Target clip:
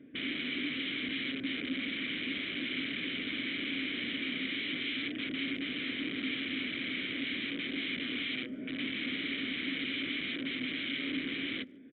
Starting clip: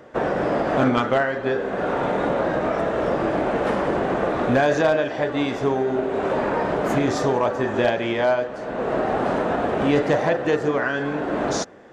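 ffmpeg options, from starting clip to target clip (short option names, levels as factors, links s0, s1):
-filter_complex "[0:a]afftfilt=real='re*pow(10,7/40*sin(2*PI*(1.6*log(max(b,1)*sr/1024/100)/log(2)-(2.2)*(pts-256)/sr)))':imag='im*pow(10,7/40*sin(2*PI*(1.6*log(max(b,1)*sr/1024/100)/log(2)-(2.2)*(pts-256)/sr)))':win_size=1024:overlap=0.75,equalizer=f=74:t=o:w=3:g=14.5,aresample=8000,aeval=exprs='(mod(8.41*val(0)+1,2)-1)/8.41':c=same,aresample=44100,asplit=3[s0][s1][s2];[s0]bandpass=f=270:t=q:w=8,volume=1[s3];[s1]bandpass=f=2290:t=q:w=8,volume=0.501[s4];[s2]bandpass=f=3010:t=q:w=8,volume=0.355[s5];[s3][s4][s5]amix=inputs=3:normalize=0,asplit=2[s6][s7];[s7]adelay=150,highpass=300,lowpass=3400,asoftclip=type=hard:threshold=0.0266,volume=0.0316[s8];[s6][s8]amix=inputs=2:normalize=0"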